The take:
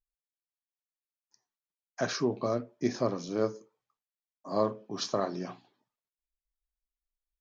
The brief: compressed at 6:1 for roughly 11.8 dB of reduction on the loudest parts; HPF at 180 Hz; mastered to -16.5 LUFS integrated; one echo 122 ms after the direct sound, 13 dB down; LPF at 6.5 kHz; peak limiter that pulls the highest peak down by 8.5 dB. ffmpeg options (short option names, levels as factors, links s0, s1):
-af "highpass=180,lowpass=6500,acompressor=threshold=0.0158:ratio=6,alimiter=level_in=2.11:limit=0.0631:level=0:latency=1,volume=0.473,aecho=1:1:122:0.224,volume=22.4"